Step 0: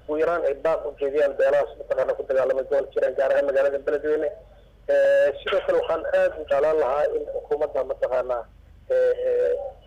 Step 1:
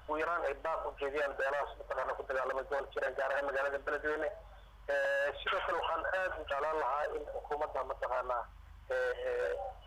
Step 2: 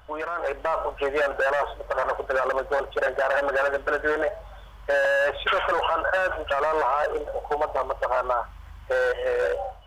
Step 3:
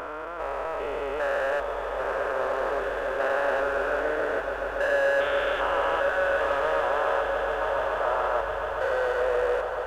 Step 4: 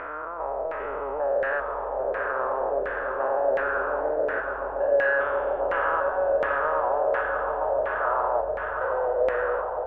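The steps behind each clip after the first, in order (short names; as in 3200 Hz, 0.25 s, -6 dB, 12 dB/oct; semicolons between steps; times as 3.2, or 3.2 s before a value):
ten-band EQ 125 Hz -6 dB, 250 Hz -8 dB, 500 Hz -12 dB, 1000 Hz +11 dB; limiter -22.5 dBFS, peak gain reduction 11 dB; gain -2.5 dB
AGC gain up to 8 dB; gain +3 dB
stepped spectrum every 0.4 s; swelling echo 0.142 s, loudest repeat 8, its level -14 dB
LFO low-pass saw down 1.4 Hz 570–2000 Hz; gain -3 dB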